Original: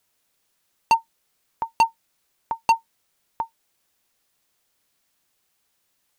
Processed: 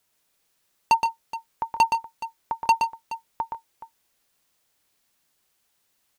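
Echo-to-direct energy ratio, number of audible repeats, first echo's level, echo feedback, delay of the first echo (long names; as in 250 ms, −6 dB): −4.5 dB, 2, −5.5 dB, repeats not evenly spaced, 120 ms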